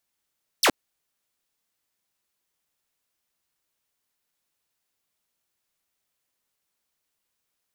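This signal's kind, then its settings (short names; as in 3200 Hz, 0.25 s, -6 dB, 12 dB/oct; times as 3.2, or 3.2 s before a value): laser zap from 6400 Hz, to 210 Hz, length 0.07 s saw, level -13 dB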